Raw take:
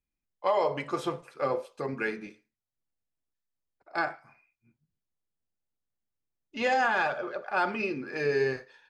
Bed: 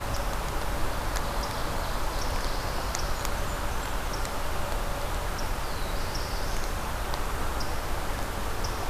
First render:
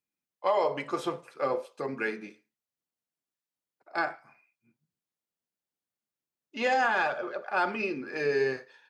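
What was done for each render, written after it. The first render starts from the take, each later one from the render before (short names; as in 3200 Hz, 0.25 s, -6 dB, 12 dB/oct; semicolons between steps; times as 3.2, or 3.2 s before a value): HPF 170 Hz 12 dB/oct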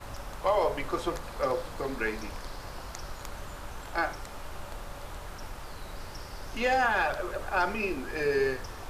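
add bed -10.5 dB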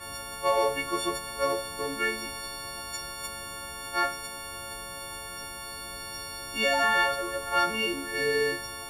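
frequency quantiser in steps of 4 st; notch comb 790 Hz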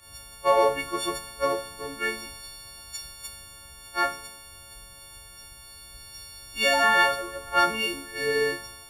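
upward compressor, threshold -45 dBFS; three-band expander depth 100%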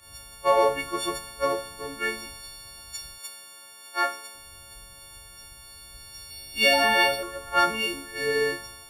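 3.18–4.35 HPF 330 Hz; 6.29–7.23 doubler 14 ms -3.5 dB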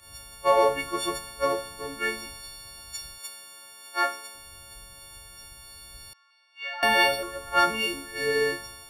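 6.13–6.83 ladder band-pass 1400 Hz, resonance 55%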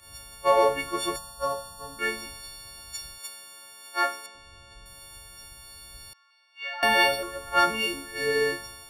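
1.16–1.99 fixed phaser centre 890 Hz, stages 4; 4.26–4.86 air absorption 94 m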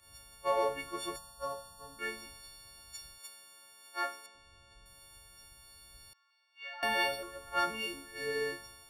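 gain -10 dB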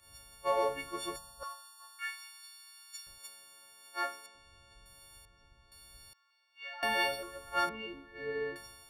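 1.43–3.07 HPF 1100 Hz 24 dB/oct; 5.25–5.72 tape spacing loss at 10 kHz 26 dB; 7.69–8.56 air absorption 430 m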